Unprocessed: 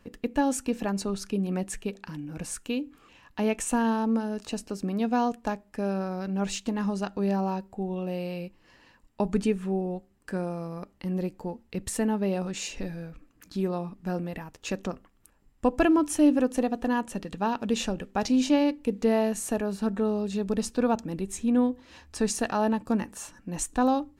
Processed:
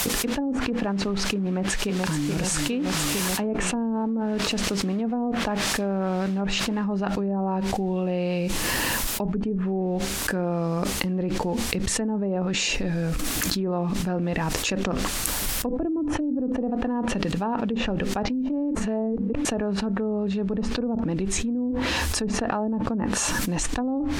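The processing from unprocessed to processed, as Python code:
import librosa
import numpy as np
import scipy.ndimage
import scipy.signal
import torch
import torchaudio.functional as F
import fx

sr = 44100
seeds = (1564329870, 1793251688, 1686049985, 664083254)

y = fx.echo_throw(x, sr, start_s=1.47, length_s=0.81, ms=430, feedback_pct=70, wet_db=-11.0)
y = fx.noise_floor_step(y, sr, seeds[0], at_s=6.84, before_db=-46, after_db=-60, tilt_db=0.0)
y = fx.edit(y, sr, fx.reverse_span(start_s=18.75, length_s=0.7), tone=tone)
y = fx.env_lowpass_down(y, sr, base_hz=410.0, full_db=-19.5)
y = fx.high_shelf(y, sr, hz=11000.0, db=3.0)
y = fx.env_flatten(y, sr, amount_pct=100)
y = y * 10.0 ** (-7.5 / 20.0)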